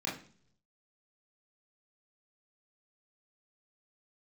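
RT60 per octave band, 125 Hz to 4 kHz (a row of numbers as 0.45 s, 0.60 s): 1.0 s, 0.70 s, 0.55 s, 0.45 s, 0.45 s, 0.50 s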